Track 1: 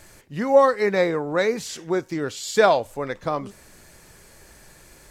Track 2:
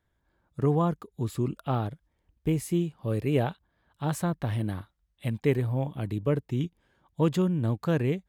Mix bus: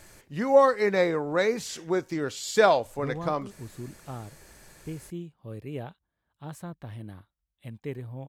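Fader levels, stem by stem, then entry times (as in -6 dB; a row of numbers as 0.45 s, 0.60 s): -3.0 dB, -11.0 dB; 0.00 s, 2.40 s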